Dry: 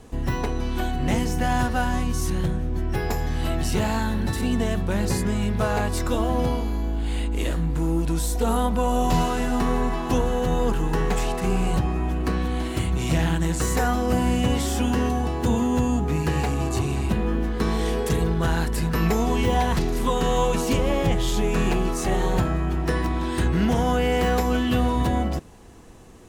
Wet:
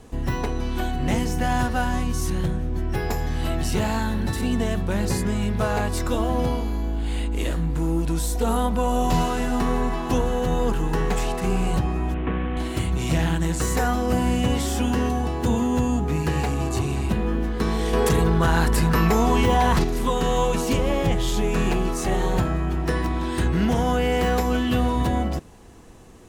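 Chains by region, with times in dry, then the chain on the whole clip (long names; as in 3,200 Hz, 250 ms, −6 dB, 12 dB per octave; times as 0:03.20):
0:12.14–0:12.57: variable-slope delta modulation 16 kbit/s + high-pass filter 45 Hz
0:17.93–0:19.84: parametric band 1,100 Hz +4.5 dB 1 octave + envelope flattener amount 70%
whole clip: no processing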